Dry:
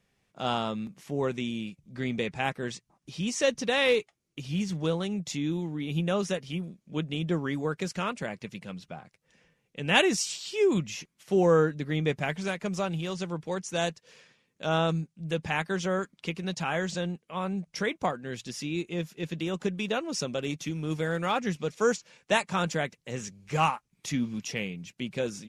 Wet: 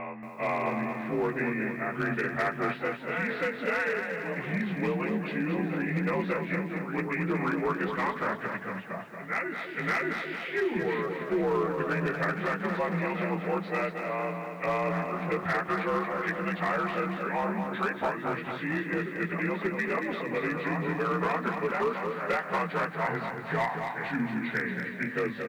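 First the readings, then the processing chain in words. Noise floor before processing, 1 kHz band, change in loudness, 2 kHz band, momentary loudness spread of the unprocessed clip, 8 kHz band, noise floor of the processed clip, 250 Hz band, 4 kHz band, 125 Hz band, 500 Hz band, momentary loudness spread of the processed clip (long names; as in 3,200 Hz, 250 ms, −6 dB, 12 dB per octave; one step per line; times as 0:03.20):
−77 dBFS, +2.5 dB, −0.5 dB, +3.5 dB, 12 LU, below −15 dB, −40 dBFS, −0.5 dB, −11.5 dB, −2.5 dB, −1.0 dB, 4 LU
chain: partials spread apart or drawn together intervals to 87%
echo with shifted repeats 202 ms, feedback 49%, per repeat +84 Hz, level −20 dB
automatic gain control gain up to 3.5 dB
tilt shelving filter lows −7 dB, about 880 Hz
mains-hum notches 50/100/150/200/250/300 Hz
backwards echo 589 ms −12 dB
downward compressor 6 to 1, threshold −30 dBFS, peak gain reduction 15.5 dB
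low-pass filter 2,000 Hz 24 dB per octave
hard clipping −28 dBFS, distortion −20 dB
feedback echo at a low word length 229 ms, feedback 55%, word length 11 bits, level −6.5 dB
level +5.5 dB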